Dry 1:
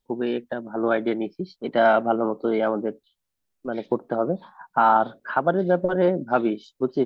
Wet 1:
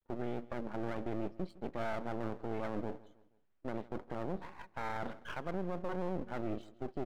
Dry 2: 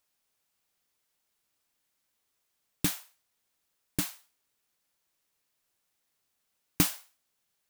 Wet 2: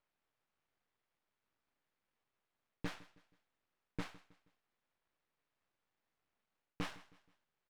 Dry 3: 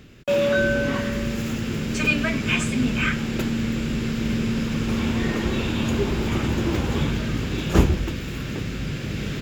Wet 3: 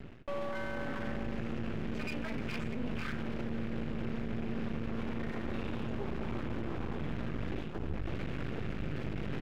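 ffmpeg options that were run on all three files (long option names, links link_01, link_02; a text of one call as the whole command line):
ffmpeg -i in.wav -af "lowpass=2000,areverse,acompressor=threshold=-29dB:ratio=10,areverse,aeval=exprs='max(val(0),0)':channel_layout=same,alimiter=level_in=5.5dB:limit=-24dB:level=0:latency=1:release=34,volume=-5.5dB,aecho=1:1:159|318|477:0.1|0.041|0.0168,volume=3dB" out.wav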